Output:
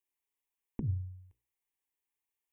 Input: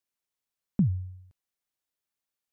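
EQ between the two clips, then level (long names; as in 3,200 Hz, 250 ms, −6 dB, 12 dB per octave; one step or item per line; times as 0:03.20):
mains-hum notches 60/120/180/240/300/360/420/480/540 Hz
phaser with its sweep stopped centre 920 Hz, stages 8
0.0 dB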